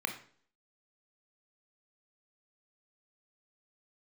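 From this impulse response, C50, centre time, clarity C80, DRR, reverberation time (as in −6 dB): 10.0 dB, 13 ms, 14.0 dB, 5.0 dB, 0.50 s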